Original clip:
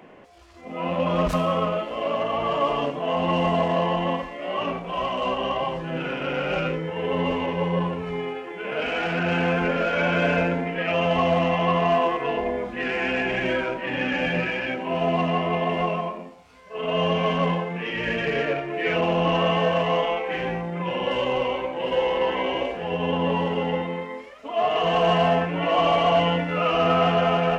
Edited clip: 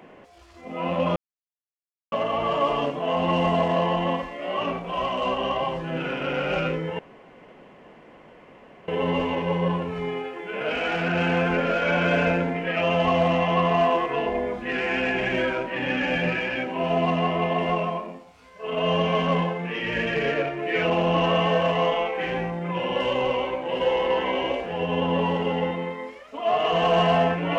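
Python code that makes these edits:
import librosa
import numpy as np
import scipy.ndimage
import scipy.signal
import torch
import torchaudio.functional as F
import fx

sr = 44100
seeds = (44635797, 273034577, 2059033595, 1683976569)

y = fx.edit(x, sr, fx.silence(start_s=1.16, length_s=0.96),
    fx.insert_room_tone(at_s=6.99, length_s=1.89), tone=tone)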